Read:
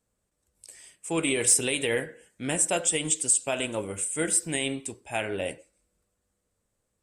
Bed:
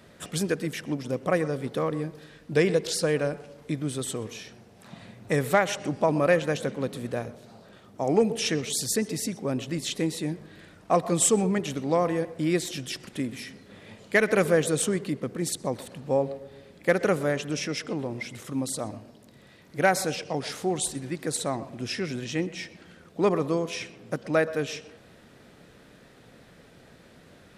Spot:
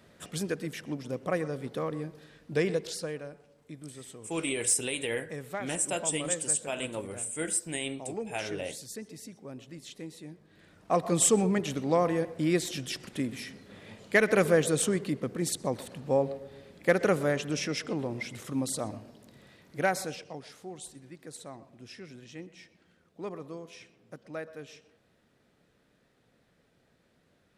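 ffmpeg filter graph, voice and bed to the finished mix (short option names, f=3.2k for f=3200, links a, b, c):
-filter_complex "[0:a]adelay=3200,volume=-5.5dB[a];[1:a]volume=8dB,afade=t=out:st=2.7:d=0.53:silence=0.334965,afade=t=in:st=10.45:d=0.72:silence=0.211349,afade=t=out:st=19.33:d=1.15:silence=0.199526[b];[a][b]amix=inputs=2:normalize=0"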